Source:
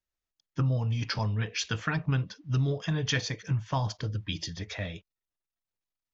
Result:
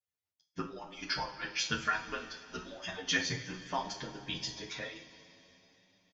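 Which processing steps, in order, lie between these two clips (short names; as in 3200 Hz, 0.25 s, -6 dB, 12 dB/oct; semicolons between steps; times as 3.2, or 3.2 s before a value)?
median-filter separation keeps percussive; two-slope reverb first 0.39 s, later 3.8 s, from -18 dB, DRR 0.5 dB; endless flanger 8.6 ms +0.35 Hz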